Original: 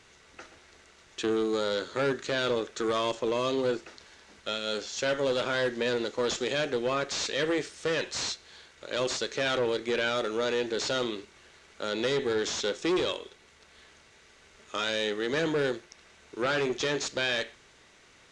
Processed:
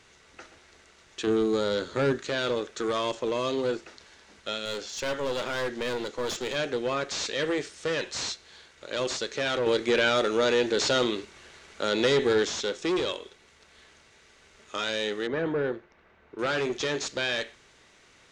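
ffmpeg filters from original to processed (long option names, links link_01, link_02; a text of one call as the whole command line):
ffmpeg -i in.wav -filter_complex "[0:a]asettb=1/sr,asplit=3[link_01][link_02][link_03];[link_01]atrim=end=1.274[link_04];[link_02]atrim=start=1.27:end=2.18,asetpts=PTS-STARTPTS,afade=type=in:duration=0.004:curve=qsin,afade=type=out:start_time=0.906:duration=0.004:curve=qsin,lowshelf=frequency=290:gain=8.5[link_05];[link_03]atrim=start=2.176[link_06];[link_04][link_05]acrossfade=duration=0.004:curve1=hsin:curve2=qsin[link_07];[link_07][link_06]acrossfade=duration=0.004:curve1=qsin:curve2=hsin,asettb=1/sr,asplit=3[link_08][link_09][link_10];[link_08]atrim=end=4.654[link_11];[link_09]atrim=start=4.65:end=6.56,asetpts=PTS-STARTPTS,afade=type=in:duration=0.004:curve=qsin,afade=type=out:start_time=1.906:duration=0.004:curve=qsin,aeval=exprs='clip(val(0),-1,0.0266)':channel_layout=same[link_12];[link_10]atrim=start=6.556[link_13];[link_11][link_12]acrossfade=duration=0.004:curve1=hsin:curve2=qsin[link_14];[link_14][link_13]acrossfade=duration=0.004:curve1=qsin:curve2=hsin,asettb=1/sr,asplit=3[link_15][link_16][link_17];[link_15]atrim=end=9.664[link_18];[link_16]atrim=start=9.66:end=12.45,asetpts=PTS-STARTPTS,afade=type=in:duration=0.004:curve=qsin,afade=type=out:start_time=2.786:duration=0.004:curve=qsin,acontrast=29[link_19];[link_17]atrim=start=12.446[link_20];[link_18][link_19]acrossfade=duration=0.004:curve1=hsin:curve2=qsin[link_21];[link_21][link_20]acrossfade=duration=0.004:curve1=qsin:curve2=hsin,asettb=1/sr,asplit=3[link_22][link_23][link_24];[link_22]atrim=end=15.274[link_25];[link_23]atrim=start=15.27:end=16.39,asetpts=PTS-STARTPTS,afade=type=in:duration=0.004:curve=qsin,afade=type=out:start_time=1.116:duration=0.004:curve=qsin,lowpass=1700[link_26];[link_24]atrim=start=16.386[link_27];[link_25][link_26]acrossfade=duration=0.004:curve1=hsin:curve2=qsin[link_28];[link_28][link_27]acrossfade=duration=0.004:curve1=qsin:curve2=hsin" out.wav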